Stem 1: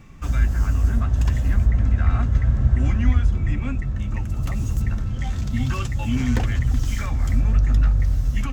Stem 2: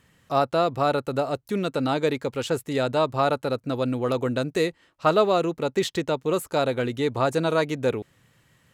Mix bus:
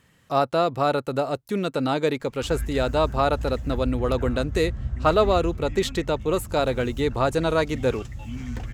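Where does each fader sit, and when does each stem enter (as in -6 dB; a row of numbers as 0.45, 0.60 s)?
-11.5, +0.5 dB; 2.20, 0.00 s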